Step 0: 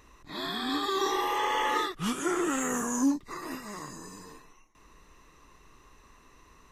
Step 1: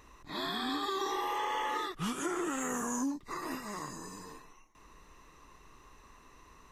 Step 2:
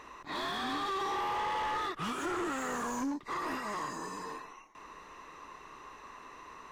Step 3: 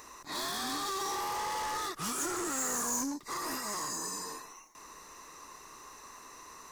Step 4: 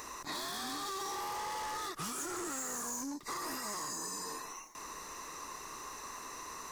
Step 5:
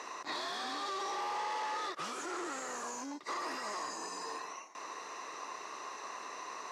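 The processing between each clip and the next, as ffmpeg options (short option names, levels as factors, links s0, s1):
-af "equalizer=f=900:w=1.5:g=2.5,acompressor=threshold=0.0316:ratio=6,volume=0.891"
-filter_complex "[0:a]asplit=2[s0][s1];[s1]highpass=f=720:p=1,volume=14.1,asoftclip=type=tanh:threshold=0.0794[s2];[s0][s2]amix=inputs=2:normalize=0,lowpass=f=1700:p=1,volume=0.501,volume=0.631"
-af "aexciter=amount=6.8:drive=4:freq=4500,volume=0.794"
-af "acompressor=threshold=0.00708:ratio=6,volume=1.78"
-filter_complex "[0:a]asplit=2[s0][s1];[s1]acrusher=samples=25:mix=1:aa=0.000001,volume=0.282[s2];[s0][s2]amix=inputs=2:normalize=0,highpass=410,lowpass=4400,volume=1.33"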